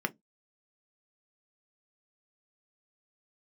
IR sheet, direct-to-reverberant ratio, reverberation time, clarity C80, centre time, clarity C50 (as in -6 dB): 7.0 dB, not exponential, 41.5 dB, 3 ms, 27.0 dB